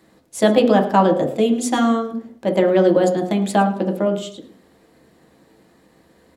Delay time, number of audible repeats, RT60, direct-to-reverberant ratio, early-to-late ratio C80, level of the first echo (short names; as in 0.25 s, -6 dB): 0.108 s, 1, 0.55 s, 2.0 dB, 13.0 dB, -16.5 dB